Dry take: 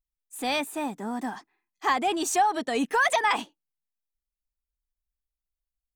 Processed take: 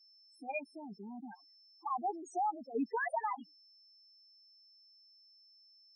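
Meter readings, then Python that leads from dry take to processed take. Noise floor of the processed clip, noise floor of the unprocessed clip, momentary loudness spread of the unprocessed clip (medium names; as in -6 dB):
-64 dBFS, under -85 dBFS, 13 LU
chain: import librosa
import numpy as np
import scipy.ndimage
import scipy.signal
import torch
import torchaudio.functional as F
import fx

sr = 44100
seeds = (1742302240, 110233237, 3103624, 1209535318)

y = fx.level_steps(x, sr, step_db=13)
y = y + 10.0 ** (-56.0 / 20.0) * np.sin(2.0 * np.pi * 5300.0 * np.arange(len(y)) / sr)
y = fx.spec_topn(y, sr, count=4)
y = F.gain(torch.from_numpy(y), -5.0).numpy()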